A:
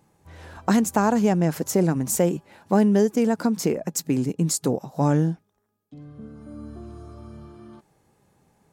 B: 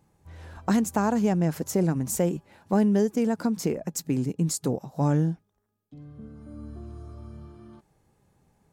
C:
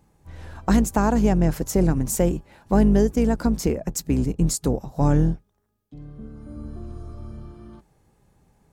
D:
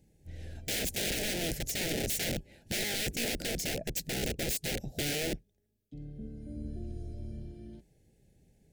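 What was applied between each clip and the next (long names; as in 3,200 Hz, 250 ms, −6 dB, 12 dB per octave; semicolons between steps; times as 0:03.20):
low-shelf EQ 100 Hz +10.5 dB; level −5 dB
sub-octave generator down 2 octaves, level −3 dB; level +3.5 dB
wrap-around overflow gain 22 dB; Butterworth band-reject 1,100 Hz, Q 0.84; level −4 dB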